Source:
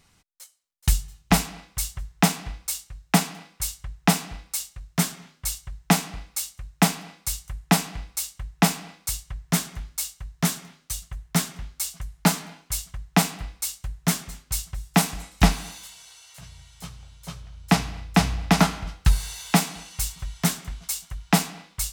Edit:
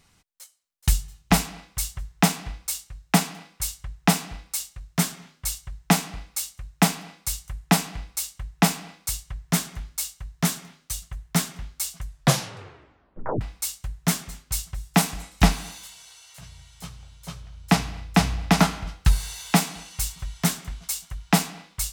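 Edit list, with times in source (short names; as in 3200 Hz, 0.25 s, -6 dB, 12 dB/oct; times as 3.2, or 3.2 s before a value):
12.04 tape stop 1.37 s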